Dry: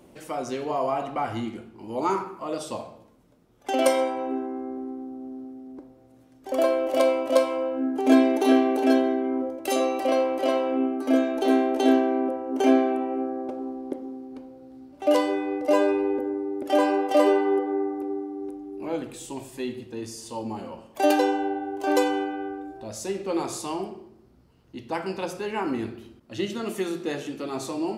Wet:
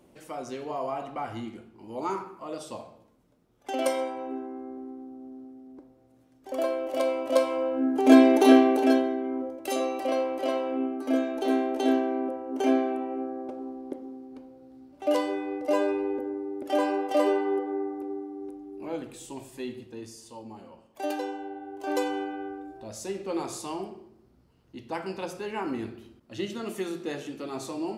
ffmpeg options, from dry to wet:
-af "volume=10.5dB,afade=t=in:st=7.04:d=1.4:silence=0.334965,afade=t=out:st=8.44:d=0.65:silence=0.398107,afade=t=out:st=19.77:d=0.65:silence=0.473151,afade=t=in:st=21.49:d=0.84:silence=0.446684"

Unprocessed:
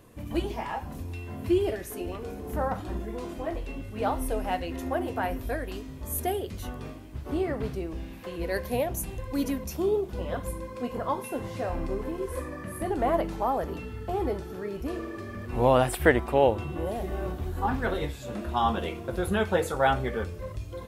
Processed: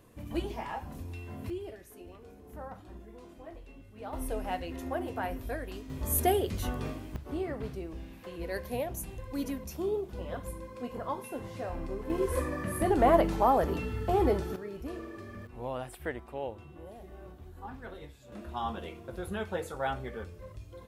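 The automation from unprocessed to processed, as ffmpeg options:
-af "asetnsamples=n=441:p=0,asendcmd='1.5 volume volume -14.5dB;4.13 volume volume -5dB;5.9 volume volume 3dB;7.16 volume volume -6dB;12.1 volume volume 3dB;14.56 volume volume -6.5dB;15.47 volume volume -16dB;18.32 volume volume -9.5dB',volume=-4.5dB"

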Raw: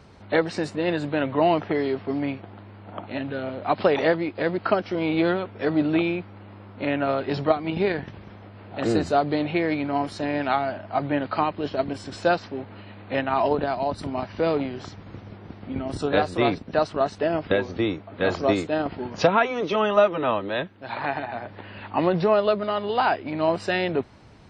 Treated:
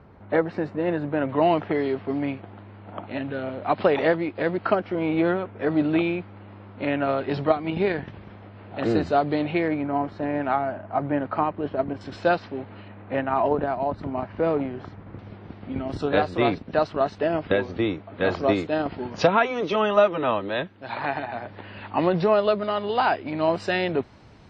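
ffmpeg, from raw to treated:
-af "asetnsamples=n=441:p=0,asendcmd='1.29 lowpass f 3500;4.75 lowpass f 2300;5.7 lowpass f 3800;9.68 lowpass f 1700;12.01 lowpass f 3800;12.88 lowpass f 1900;15.19 lowpass f 4200;18.68 lowpass f 7400',lowpass=1.7k"

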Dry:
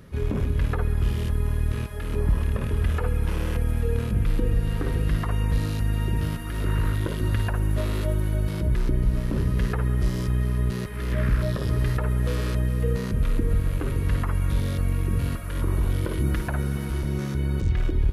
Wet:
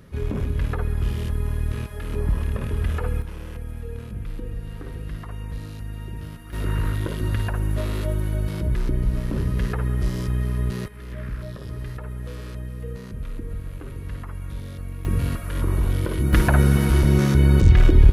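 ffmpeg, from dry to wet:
-af "asetnsamples=n=441:p=0,asendcmd='3.22 volume volume -9dB;6.53 volume volume 0dB;10.88 volume volume -9dB;15.05 volume volume 2dB;16.33 volume volume 10dB',volume=-0.5dB"

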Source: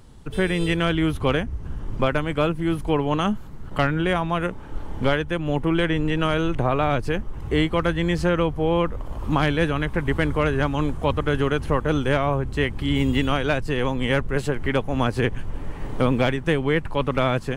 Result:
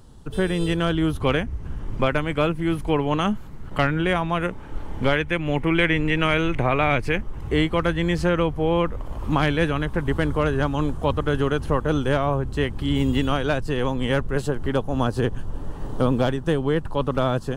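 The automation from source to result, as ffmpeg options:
-af "asetnsamples=n=441:p=0,asendcmd='1.22 equalizer g 2.5;5.16 equalizer g 11;7.21 equalizer g 0.5;9.78 equalizer g -6.5;14.42 equalizer g -14',equalizer=f=2.2k:t=o:w=0.54:g=-8.5"

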